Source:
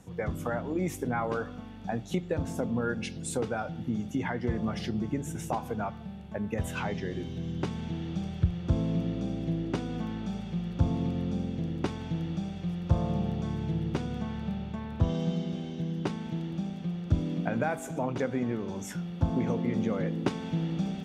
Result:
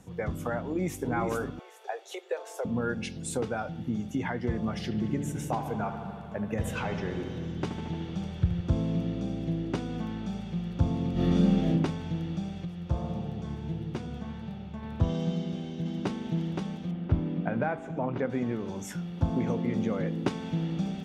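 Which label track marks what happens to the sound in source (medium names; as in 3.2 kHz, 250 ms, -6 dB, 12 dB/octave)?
0.620000	1.090000	echo throw 410 ms, feedback 25%, level -4.5 dB
1.590000	2.650000	steep high-pass 390 Hz 72 dB/octave
4.790000	8.610000	feedback echo behind a low-pass 75 ms, feedback 80%, low-pass 2.9 kHz, level -10 dB
11.120000	11.680000	reverb throw, RT60 0.99 s, DRR -10 dB
12.650000	14.830000	flange 1.6 Hz, delay 6.3 ms, depth 9.8 ms, regen +45%
15.330000	16.250000	echo throw 520 ms, feedback 60%, level -4 dB
16.910000	18.300000	low-pass 2.4 kHz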